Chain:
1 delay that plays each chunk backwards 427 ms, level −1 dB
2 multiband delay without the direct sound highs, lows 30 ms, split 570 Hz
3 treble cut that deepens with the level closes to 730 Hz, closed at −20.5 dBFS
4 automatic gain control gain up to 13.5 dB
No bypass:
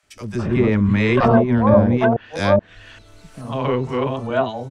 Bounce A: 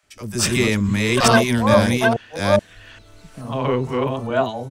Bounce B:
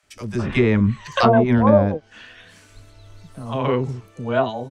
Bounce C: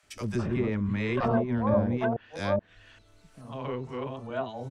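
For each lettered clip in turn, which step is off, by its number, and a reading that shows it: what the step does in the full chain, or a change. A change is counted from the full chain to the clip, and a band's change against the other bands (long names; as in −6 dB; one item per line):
3, 4 kHz band +11.0 dB
1, 4 kHz band +2.5 dB
4, change in integrated loudness −11.5 LU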